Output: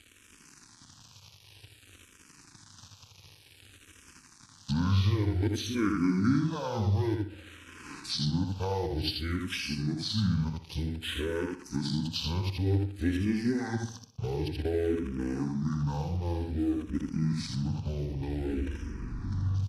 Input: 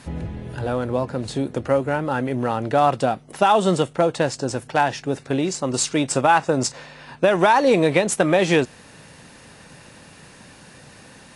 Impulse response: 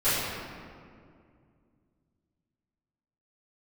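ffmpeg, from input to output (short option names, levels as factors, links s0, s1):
-filter_complex "[0:a]areverse,aeval=exprs='sgn(val(0))*max(abs(val(0))-0.00794,0)':c=same,highshelf=f=5200:g=10.5,bandreject=f=3600:w=8.7,asplit=2[s0][s1];[s1]adelay=47,volume=0.562[s2];[s0][s2]amix=inputs=2:normalize=0,asetrate=25442,aresample=44100,acompressor=threshold=0.0251:ratio=2.5,equalizer=f=100:t=o:w=0.67:g=11,equalizer=f=250:t=o:w=0.67:g=5,equalizer=f=630:t=o:w=0.67:g=-10,equalizer=f=2500:t=o:w=0.67:g=3,asplit=2[s3][s4];[s4]aecho=0:1:62|124|186|248|310:0.237|0.121|0.0617|0.0315|0.016[s5];[s3][s5]amix=inputs=2:normalize=0,asplit=2[s6][s7];[s7]afreqshift=-0.54[s8];[s6][s8]amix=inputs=2:normalize=1"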